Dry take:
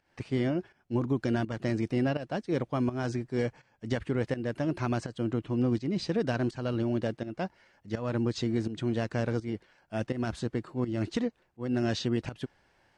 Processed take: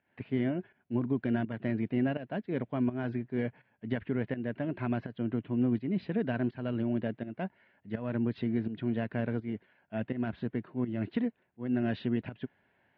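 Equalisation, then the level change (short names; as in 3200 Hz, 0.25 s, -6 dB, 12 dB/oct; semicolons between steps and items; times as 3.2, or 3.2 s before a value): air absorption 500 m; speaker cabinet 150–4100 Hz, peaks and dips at 150 Hz -5 dB, 330 Hz -8 dB, 510 Hz -8 dB, 820 Hz -7 dB, 1200 Hz -10 dB; +3.5 dB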